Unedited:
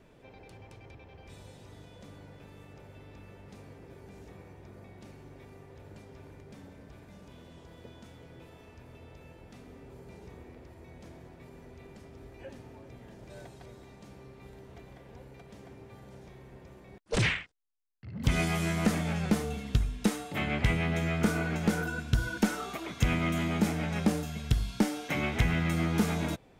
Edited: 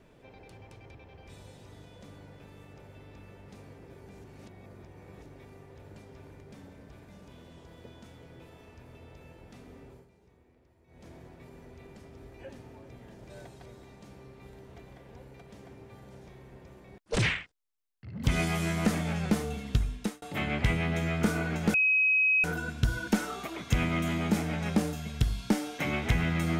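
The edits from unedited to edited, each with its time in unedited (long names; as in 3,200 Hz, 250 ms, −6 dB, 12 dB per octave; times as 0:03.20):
0:04.24–0:05.26: reverse
0:09.77–0:11.19: duck −14.5 dB, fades 0.32 s equal-power
0:19.92–0:20.22: fade out
0:21.74: insert tone 2,540 Hz −21 dBFS 0.70 s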